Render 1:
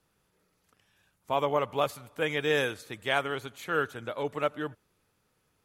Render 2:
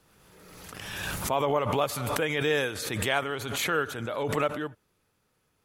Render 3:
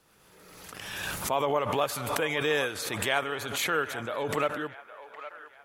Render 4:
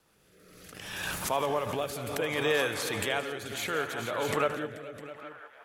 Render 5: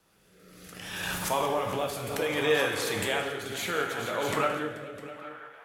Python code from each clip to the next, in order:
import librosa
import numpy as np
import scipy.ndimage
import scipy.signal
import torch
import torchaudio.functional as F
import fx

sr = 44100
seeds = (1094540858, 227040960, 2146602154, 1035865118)

y1 = fx.pre_swell(x, sr, db_per_s=30.0)
y2 = fx.low_shelf(y1, sr, hz=220.0, db=-7.0)
y2 = fx.echo_wet_bandpass(y2, sr, ms=812, feedback_pct=40, hz=1200.0, wet_db=-12.0)
y3 = fx.echo_multitap(y2, sr, ms=(77, 173, 434, 656), db=(-17.5, -14.5, -13.0, -11.0))
y3 = fx.rotary(y3, sr, hz=0.65)
y4 = fx.rev_plate(y3, sr, seeds[0], rt60_s=0.82, hf_ratio=0.9, predelay_ms=0, drr_db=2.5)